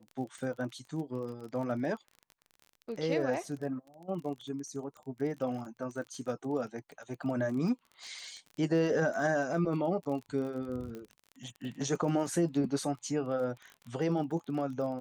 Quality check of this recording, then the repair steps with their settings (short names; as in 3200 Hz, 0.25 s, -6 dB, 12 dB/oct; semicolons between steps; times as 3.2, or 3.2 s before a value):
crackle 29/s -40 dBFS
10.95 pop -30 dBFS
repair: de-click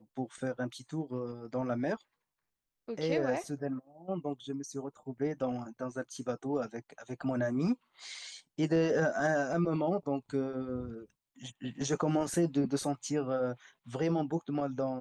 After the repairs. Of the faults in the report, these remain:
none